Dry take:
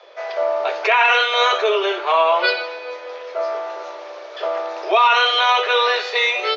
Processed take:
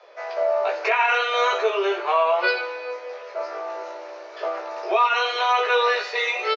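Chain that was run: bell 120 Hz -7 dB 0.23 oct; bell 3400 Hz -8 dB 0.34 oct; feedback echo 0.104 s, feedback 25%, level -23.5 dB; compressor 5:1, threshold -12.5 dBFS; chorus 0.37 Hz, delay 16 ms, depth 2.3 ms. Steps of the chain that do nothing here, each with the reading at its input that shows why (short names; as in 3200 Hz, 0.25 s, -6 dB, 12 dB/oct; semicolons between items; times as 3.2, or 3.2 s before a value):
bell 120 Hz: input band starts at 320 Hz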